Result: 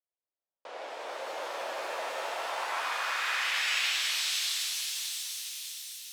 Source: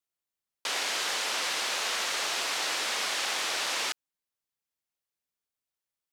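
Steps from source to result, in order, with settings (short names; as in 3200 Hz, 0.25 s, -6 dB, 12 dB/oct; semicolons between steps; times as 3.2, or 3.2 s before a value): split-band echo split 1900 Hz, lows 0.383 s, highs 0.6 s, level -3 dB; band-pass sweep 590 Hz -> 3900 Hz, 2.13–4.25; shimmer reverb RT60 2.9 s, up +7 st, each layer -2 dB, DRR -1 dB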